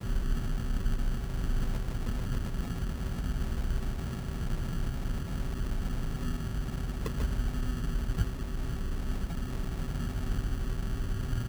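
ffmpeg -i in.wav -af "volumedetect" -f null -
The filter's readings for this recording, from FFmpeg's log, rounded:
mean_volume: -30.7 dB
max_volume: -16.4 dB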